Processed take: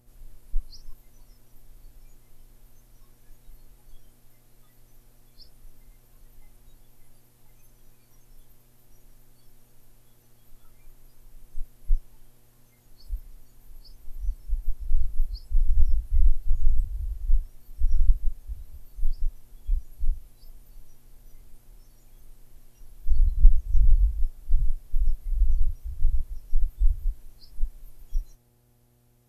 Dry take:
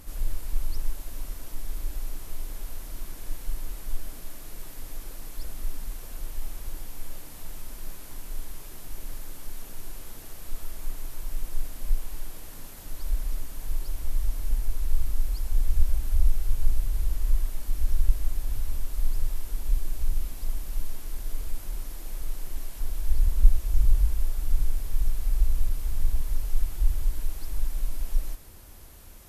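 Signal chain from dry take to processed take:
hum with harmonics 120 Hz, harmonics 7, −47 dBFS −7 dB per octave
noise reduction from a noise print of the clip's start 20 dB
level +2 dB

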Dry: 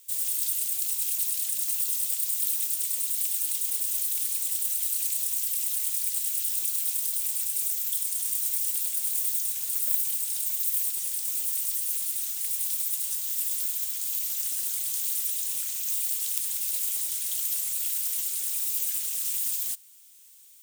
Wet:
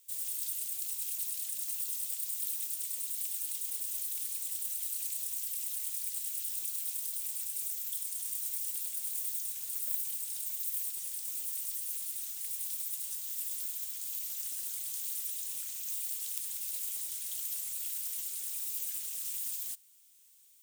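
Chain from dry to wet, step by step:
low-shelf EQ 110 Hz +6.5 dB
level −8.5 dB

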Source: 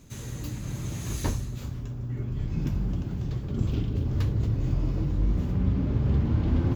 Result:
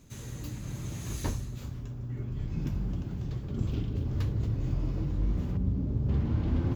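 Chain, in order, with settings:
0:05.57–0:06.09: parametric band 2,100 Hz −12.5 dB 2.8 octaves
level −4 dB

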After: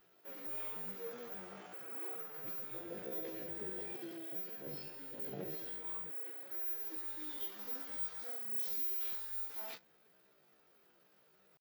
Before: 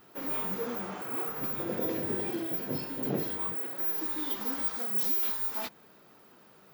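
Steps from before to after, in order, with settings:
graphic EQ with 15 bands 100 Hz −12 dB, 250 Hz −9 dB, 1,000 Hz −7 dB, 10,000 Hz −5 dB
tempo change 0.58×
level −9 dB

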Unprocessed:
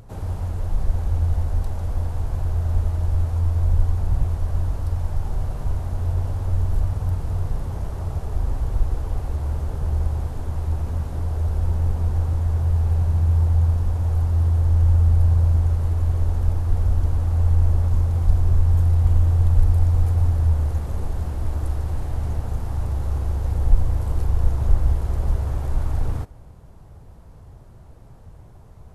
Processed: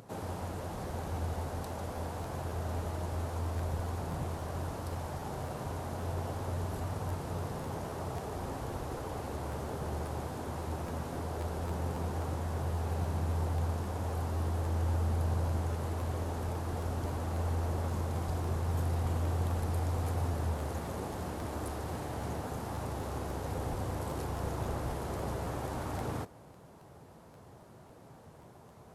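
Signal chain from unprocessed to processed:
high-pass filter 200 Hz 12 dB per octave
regular buffer underruns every 0.27 s, samples 512, repeat, from 0:00.87

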